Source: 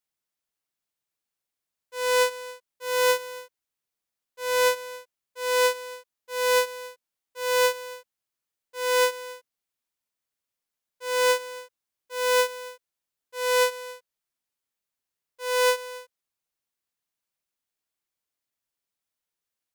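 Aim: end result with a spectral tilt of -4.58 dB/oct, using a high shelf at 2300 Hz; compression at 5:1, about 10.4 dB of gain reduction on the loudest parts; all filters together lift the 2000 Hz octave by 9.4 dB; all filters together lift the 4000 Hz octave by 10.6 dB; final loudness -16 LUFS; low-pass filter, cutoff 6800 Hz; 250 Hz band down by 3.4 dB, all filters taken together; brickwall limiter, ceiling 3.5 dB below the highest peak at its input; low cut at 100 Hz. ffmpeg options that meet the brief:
-af "highpass=100,lowpass=6.8k,equalizer=f=250:t=o:g=-5.5,equalizer=f=2k:t=o:g=8.5,highshelf=f=2.3k:g=5,equalizer=f=4k:t=o:g=6.5,acompressor=threshold=-21dB:ratio=5,volume=14.5dB,alimiter=limit=-1dB:level=0:latency=1"

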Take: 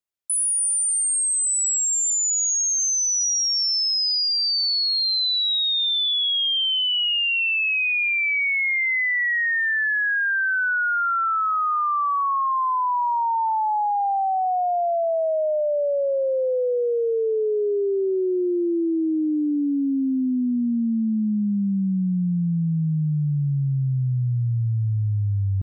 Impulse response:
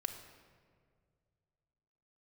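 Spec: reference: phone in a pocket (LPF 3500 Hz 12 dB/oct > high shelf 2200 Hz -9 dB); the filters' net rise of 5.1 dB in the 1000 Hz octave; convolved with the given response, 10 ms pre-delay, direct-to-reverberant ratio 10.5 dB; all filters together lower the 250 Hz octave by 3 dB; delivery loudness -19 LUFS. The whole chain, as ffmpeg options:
-filter_complex "[0:a]equalizer=f=250:t=o:g=-4.5,equalizer=f=1k:t=o:g=8.5,asplit=2[a][b];[1:a]atrim=start_sample=2205,adelay=10[c];[b][c]afir=irnorm=-1:irlink=0,volume=-10.5dB[d];[a][d]amix=inputs=2:normalize=0,lowpass=3.5k,highshelf=f=2.2k:g=-9,volume=2dB"

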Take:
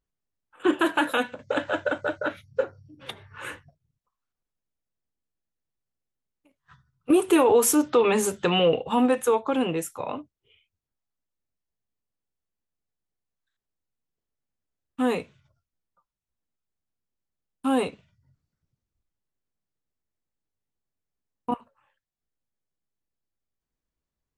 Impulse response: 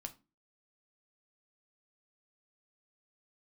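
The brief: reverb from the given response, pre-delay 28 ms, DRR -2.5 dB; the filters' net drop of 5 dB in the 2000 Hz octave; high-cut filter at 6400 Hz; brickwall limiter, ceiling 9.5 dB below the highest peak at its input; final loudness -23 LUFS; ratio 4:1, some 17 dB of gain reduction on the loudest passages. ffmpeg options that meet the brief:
-filter_complex "[0:a]lowpass=6.4k,equalizer=f=2k:t=o:g=-7.5,acompressor=threshold=-37dB:ratio=4,alimiter=level_in=8dB:limit=-24dB:level=0:latency=1,volume=-8dB,asplit=2[a][b];[1:a]atrim=start_sample=2205,adelay=28[c];[b][c]afir=irnorm=-1:irlink=0,volume=6.5dB[d];[a][d]amix=inputs=2:normalize=0,volume=15dB"

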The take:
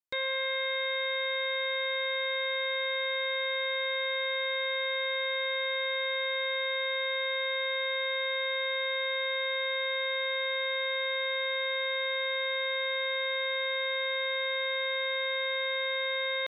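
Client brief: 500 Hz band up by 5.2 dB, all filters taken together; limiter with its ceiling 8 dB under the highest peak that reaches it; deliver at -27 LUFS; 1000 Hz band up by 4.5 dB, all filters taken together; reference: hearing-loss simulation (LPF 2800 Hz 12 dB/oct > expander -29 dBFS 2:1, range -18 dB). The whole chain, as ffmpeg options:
-af "equalizer=f=500:t=o:g=4.5,equalizer=f=1k:t=o:g=4,alimiter=level_in=6.5dB:limit=-24dB:level=0:latency=1,volume=-6.5dB,lowpass=2.8k,agate=range=-18dB:threshold=-29dB:ratio=2,volume=19.5dB"

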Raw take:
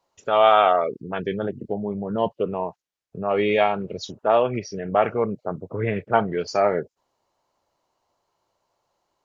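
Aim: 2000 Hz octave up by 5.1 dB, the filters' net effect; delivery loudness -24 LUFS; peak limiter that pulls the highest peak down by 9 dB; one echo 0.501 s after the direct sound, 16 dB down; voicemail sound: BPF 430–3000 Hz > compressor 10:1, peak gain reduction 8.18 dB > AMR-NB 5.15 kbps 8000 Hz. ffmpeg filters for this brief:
-af "equalizer=f=2k:t=o:g=7.5,alimiter=limit=-12dB:level=0:latency=1,highpass=430,lowpass=3k,aecho=1:1:501:0.158,acompressor=threshold=-25dB:ratio=10,volume=9.5dB" -ar 8000 -c:a libopencore_amrnb -b:a 5150

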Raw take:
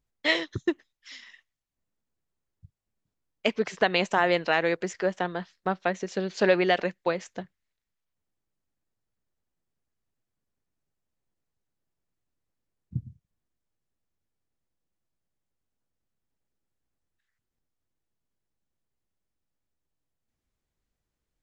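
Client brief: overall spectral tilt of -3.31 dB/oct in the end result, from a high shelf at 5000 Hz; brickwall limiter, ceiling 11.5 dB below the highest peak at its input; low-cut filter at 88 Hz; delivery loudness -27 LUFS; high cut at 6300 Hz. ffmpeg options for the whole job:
-af "highpass=88,lowpass=6.3k,highshelf=f=5k:g=5,volume=4.5dB,alimiter=limit=-13dB:level=0:latency=1"

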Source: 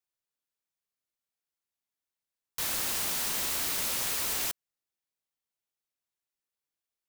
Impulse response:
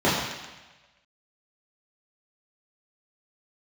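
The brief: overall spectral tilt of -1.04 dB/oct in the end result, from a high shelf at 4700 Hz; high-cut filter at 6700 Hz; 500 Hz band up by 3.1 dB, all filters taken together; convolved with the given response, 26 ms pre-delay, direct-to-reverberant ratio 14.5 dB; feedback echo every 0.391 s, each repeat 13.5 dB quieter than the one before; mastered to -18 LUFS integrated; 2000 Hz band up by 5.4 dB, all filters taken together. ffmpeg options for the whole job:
-filter_complex "[0:a]lowpass=6.7k,equalizer=f=500:t=o:g=3.5,equalizer=f=2k:t=o:g=5,highshelf=f=4.7k:g=8,aecho=1:1:391|782:0.211|0.0444,asplit=2[a][b];[1:a]atrim=start_sample=2205,adelay=26[c];[b][c]afir=irnorm=-1:irlink=0,volume=-34dB[d];[a][d]amix=inputs=2:normalize=0,volume=11dB"

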